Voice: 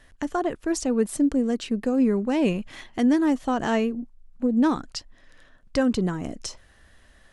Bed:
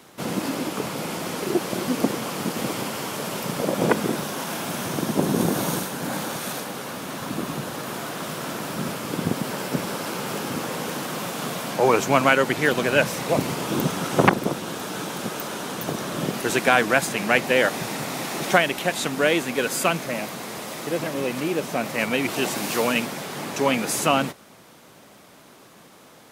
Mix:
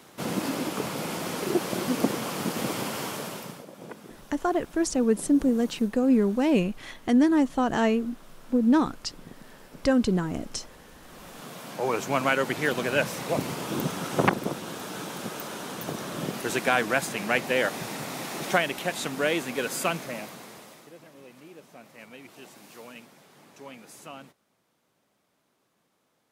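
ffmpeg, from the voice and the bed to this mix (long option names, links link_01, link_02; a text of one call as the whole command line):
ffmpeg -i stem1.wav -i stem2.wav -filter_complex "[0:a]adelay=4100,volume=0dB[link_01];[1:a]volume=14dB,afade=type=out:start_time=3.04:duration=0.61:silence=0.105925,afade=type=in:start_time=10.99:duration=1.48:silence=0.149624,afade=type=out:start_time=19.91:duration=1.02:silence=0.133352[link_02];[link_01][link_02]amix=inputs=2:normalize=0" out.wav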